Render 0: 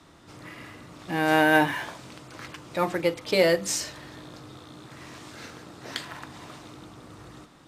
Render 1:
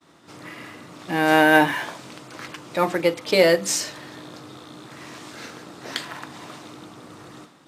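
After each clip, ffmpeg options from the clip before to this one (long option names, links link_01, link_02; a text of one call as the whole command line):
ffmpeg -i in.wav -af "highpass=150,agate=range=-33dB:threshold=-50dB:ratio=3:detection=peak,volume=4.5dB" out.wav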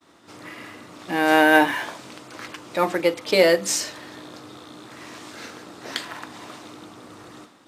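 ffmpeg -i in.wav -af "equalizer=frequency=150:width=5.1:gain=-11.5" out.wav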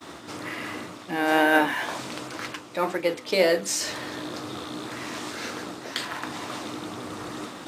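ffmpeg -i in.wav -af "areverse,acompressor=mode=upward:threshold=-19dB:ratio=2.5,areverse,flanger=delay=7.2:depth=9.9:regen=70:speed=2:shape=triangular" out.wav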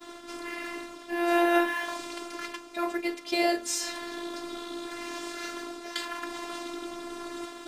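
ffmpeg -i in.wav -af "afftfilt=real='hypot(re,im)*cos(PI*b)':imag='0':win_size=512:overlap=0.75" out.wav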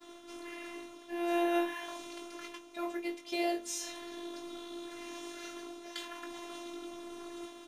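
ffmpeg -i in.wav -filter_complex "[0:a]asplit=2[link_01][link_02];[link_02]adelay=20,volume=-5dB[link_03];[link_01][link_03]amix=inputs=2:normalize=0,volume=-9dB" out.wav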